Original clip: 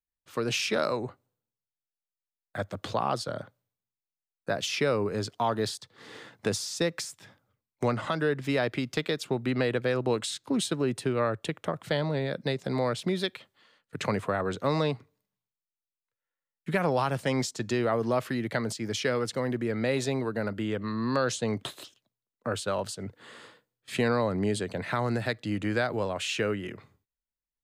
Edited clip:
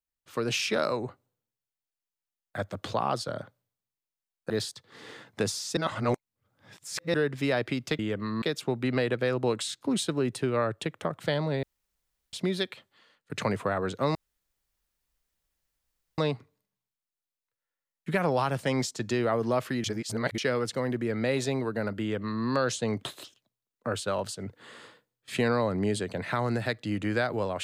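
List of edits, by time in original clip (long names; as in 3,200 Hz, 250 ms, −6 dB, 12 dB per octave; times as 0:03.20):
0:04.50–0:05.56: remove
0:06.83–0:08.20: reverse
0:12.26–0:12.96: fill with room tone
0:14.78: splice in room tone 2.03 s
0:18.44–0:18.98: reverse
0:20.61–0:21.04: duplicate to 0:09.05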